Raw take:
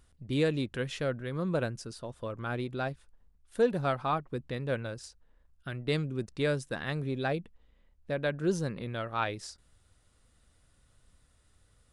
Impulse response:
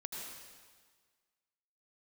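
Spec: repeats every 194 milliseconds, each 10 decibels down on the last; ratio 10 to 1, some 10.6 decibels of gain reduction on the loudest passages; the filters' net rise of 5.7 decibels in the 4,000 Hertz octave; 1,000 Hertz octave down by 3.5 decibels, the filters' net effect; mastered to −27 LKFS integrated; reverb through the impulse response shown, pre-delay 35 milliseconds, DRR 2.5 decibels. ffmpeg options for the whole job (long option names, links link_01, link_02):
-filter_complex "[0:a]equalizer=frequency=1000:width_type=o:gain=-5.5,equalizer=frequency=4000:width_type=o:gain=7,acompressor=threshold=-32dB:ratio=10,aecho=1:1:194|388|582|776:0.316|0.101|0.0324|0.0104,asplit=2[link_01][link_02];[1:a]atrim=start_sample=2205,adelay=35[link_03];[link_02][link_03]afir=irnorm=-1:irlink=0,volume=-2dB[link_04];[link_01][link_04]amix=inputs=2:normalize=0,volume=9.5dB"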